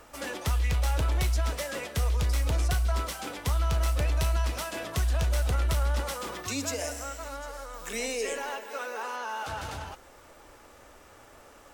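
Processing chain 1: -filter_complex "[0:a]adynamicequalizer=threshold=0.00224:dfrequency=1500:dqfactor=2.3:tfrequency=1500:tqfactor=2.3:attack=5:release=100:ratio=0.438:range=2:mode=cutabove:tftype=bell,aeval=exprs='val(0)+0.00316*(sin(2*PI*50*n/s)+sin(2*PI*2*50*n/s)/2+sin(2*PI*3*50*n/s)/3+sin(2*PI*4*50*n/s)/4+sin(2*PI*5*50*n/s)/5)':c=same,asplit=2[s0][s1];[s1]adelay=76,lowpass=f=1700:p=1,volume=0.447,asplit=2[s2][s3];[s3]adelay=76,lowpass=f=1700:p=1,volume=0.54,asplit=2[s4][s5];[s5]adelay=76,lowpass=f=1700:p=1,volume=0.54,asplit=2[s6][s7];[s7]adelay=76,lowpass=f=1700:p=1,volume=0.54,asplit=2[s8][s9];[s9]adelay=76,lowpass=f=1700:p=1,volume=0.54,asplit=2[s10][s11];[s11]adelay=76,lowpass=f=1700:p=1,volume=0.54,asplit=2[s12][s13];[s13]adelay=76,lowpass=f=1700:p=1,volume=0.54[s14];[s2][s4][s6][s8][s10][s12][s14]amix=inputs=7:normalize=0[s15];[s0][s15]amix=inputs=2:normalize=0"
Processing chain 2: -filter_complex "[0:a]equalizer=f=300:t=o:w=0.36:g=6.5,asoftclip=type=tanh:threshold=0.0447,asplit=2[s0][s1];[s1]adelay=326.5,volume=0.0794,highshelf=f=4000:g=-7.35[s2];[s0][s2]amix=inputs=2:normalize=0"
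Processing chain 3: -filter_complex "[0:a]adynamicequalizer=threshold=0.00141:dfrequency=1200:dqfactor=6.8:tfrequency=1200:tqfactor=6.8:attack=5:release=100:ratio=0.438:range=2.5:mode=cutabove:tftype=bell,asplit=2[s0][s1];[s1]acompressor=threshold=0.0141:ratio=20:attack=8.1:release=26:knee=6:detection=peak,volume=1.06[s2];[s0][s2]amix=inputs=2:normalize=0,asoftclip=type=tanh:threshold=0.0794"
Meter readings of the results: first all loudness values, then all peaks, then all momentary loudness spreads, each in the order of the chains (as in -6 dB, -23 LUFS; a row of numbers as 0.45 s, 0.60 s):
-31.5 LUFS, -34.0 LUFS, -30.0 LUFS; -17.5 dBFS, -26.5 dBFS, -22.0 dBFS; 21 LU, 20 LU, 18 LU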